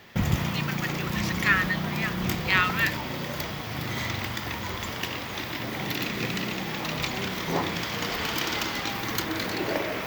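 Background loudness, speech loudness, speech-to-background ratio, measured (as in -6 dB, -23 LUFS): -29.5 LUFS, -27.5 LUFS, 2.0 dB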